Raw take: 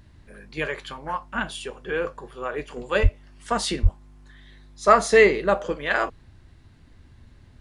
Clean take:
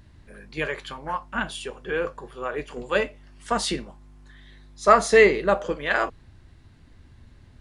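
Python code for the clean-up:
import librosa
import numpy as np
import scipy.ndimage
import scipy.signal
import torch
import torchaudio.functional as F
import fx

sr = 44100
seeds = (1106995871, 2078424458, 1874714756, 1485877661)

y = fx.fix_deplosive(x, sr, at_s=(3.02, 3.82))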